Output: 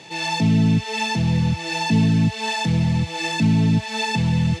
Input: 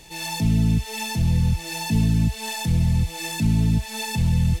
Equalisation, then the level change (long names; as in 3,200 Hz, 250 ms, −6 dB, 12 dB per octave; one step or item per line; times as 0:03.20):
high-pass filter 100 Hz 24 dB per octave
high-frequency loss of the air 120 metres
low-shelf EQ 130 Hz −11.5 dB
+8.5 dB